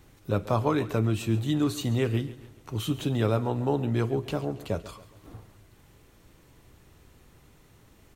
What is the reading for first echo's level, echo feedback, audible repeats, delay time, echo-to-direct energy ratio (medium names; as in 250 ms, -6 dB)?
-16.5 dB, 45%, 3, 138 ms, -15.5 dB